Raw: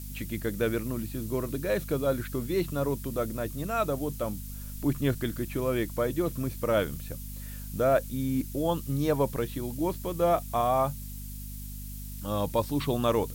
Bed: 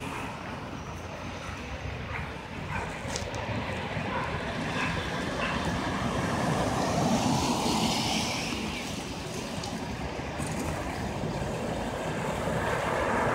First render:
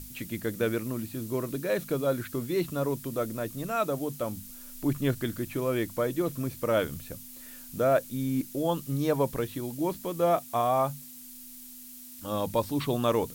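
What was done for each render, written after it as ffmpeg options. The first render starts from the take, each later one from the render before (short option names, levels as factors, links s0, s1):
-af "bandreject=f=50:t=h:w=6,bandreject=f=100:t=h:w=6,bandreject=f=150:t=h:w=6,bandreject=f=200:t=h:w=6"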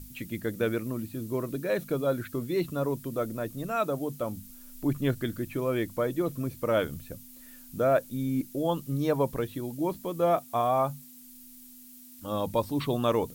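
-af "afftdn=nr=6:nf=-46"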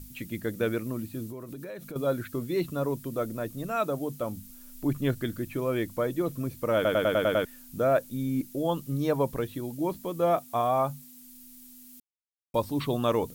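-filter_complex "[0:a]asettb=1/sr,asplit=3[s0][s1][s2];[s0]atrim=end=1.304[s3];[s1]atrim=start=1.3:end=1.96,asetpts=PTS-STARTPTS,afade=t=in:d=0.004:c=qsin,afade=t=out:st=0.656:d=0.004:c=qsin,acompressor=threshold=0.0158:ratio=8:attack=3.2:release=140:knee=1:detection=peak[s4];[s2]atrim=start=1.956[s5];[s3][s4]acrossfade=d=0.004:c1=hsin:c2=qsin[s6];[s6][s5]acrossfade=d=0.004:c1=qsin:c2=hsin,asplit=10[s7][s8][s9][s10][s11][s12][s13][s14][s15][s16];[s7]atrim=end=6.852[s17];[s8]atrim=start=6.748:end=6.852[s18];[s9]atrim=start=6.748:end=6.852[s19];[s10]atrim=start=6.748:end=6.852[s20];[s11]atrim=start=6.748:end=6.852[s21];[s12]atrim=start=6.748:end=6.852[s22];[s13]atrim=start=6.748:end=6.852[s23];[s14]atrim=start=7.448:end=12,asetpts=PTS-STARTPTS,afade=t=out:st=4.548:d=0.004:c=hsin[s24];[s15]atrim=start=12:end=12.54,asetpts=PTS-STARTPTS,volume=0[s25];[s16]atrim=start=12.54,asetpts=PTS-STARTPTS,afade=t=in:d=0.004:c=hsin[s26];[s17][s18]acrossfade=d=0.004:c1=hsin:c2=hsin[s27];[s27][s19]acrossfade=d=0.004:c1=hsin:c2=hsin[s28];[s28][s20]acrossfade=d=0.004:c1=hsin:c2=hsin[s29];[s29][s21]acrossfade=d=0.004:c1=hsin:c2=hsin[s30];[s30][s22]acrossfade=d=0.004:c1=hsin:c2=hsin[s31];[s31][s23]acrossfade=d=0.004:c1=hsin:c2=hsin[s32];[s24][s25][s26]concat=n=3:v=0:a=1[s33];[s32][s33]acrossfade=d=0.004:c1=hsin:c2=hsin"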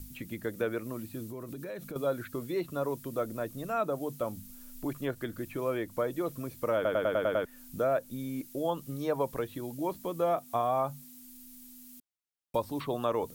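-filter_complex "[0:a]acrossover=split=400|1700[s0][s1][s2];[s0]acompressor=threshold=0.0112:ratio=4[s3];[s1]acompressor=threshold=0.0501:ratio=4[s4];[s2]acompressor=threshold=0.00398:ratio=4[s5];[s3][s4][s5]amix=inputs=3:normalize=0"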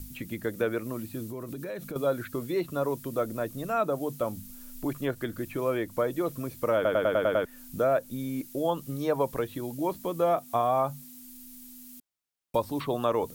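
-af "volume=1.5"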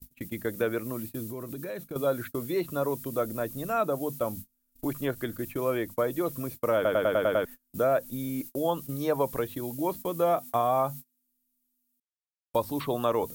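-af "agate=range=0.02:threshold=0.0112:ratio=16:detection=peak,highshelf=f=11000:g=8.5"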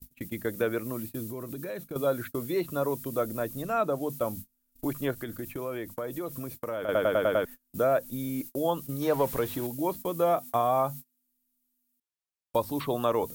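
-filter_complex "[0:a]asettb=1/sr,asplit=3[s0][s1][s2];[s0]atrim=end=3.624[s3];[s1]atrim=start=3.62:end=4.1,asetpts=PTS-STARTPTS,afade=t=in:d=0.004:c=qsin,afade=t=out:st=0.476:d=0.004:c=qsin,highshelf=f=8800:g=-7.5[s4];[s2]atrim=start=4.096[s5];[s3][s4]acrossfade=d=0.004:c1=hsin:c2=qsin[s6];[s6][s5]acrossfade=d=0.004:c1=qsin:c2=hsin,asettb=1/sr,asplit=3[s7][s8][s9];[s7]atrim=end=5.214[s10];[s8]atrim=start=5.21:end=6.89,asetpts=PTS-STARTPTS,afade=t=in:d=0.004:c=qsin,afade=t=out:st=1.676:d=0.004:c=qsin,acompressor=threshold=0.0251:ratio=3:attack=3.2:release=140:knee=1:detection=peak[s11];[s9]atrim=start=6.886[s12];[s10][s11]acrossfade=d=0.004:c1=hsin:c2=qsin[s13];[s13][s12]acrossfade=d=0.004:c1=qsin:c2=hsin,asettb=1/sr,asplit=3[s14][s15][s16];[s14]atrim=end=9.024[s17];[s15]atrim=start=9.02:end=9.67,asetpts=PTS-STARTPTS,afade=t=in:d=0.004:c=qsin,afade=t=out:st=0.646:d=0.004:c=qsin,aeval=exprs='val(0)+0.5*0.0141*sgn(val(0))':c=same[s18];[s16]atrim=start=9.666[s19];[s17][s18]acrossfade=d=0.004:c1=hsin:c2=qsin[s20];[s20][s19]acrossfade=d=0.004:c1=qsin:c2=hsin"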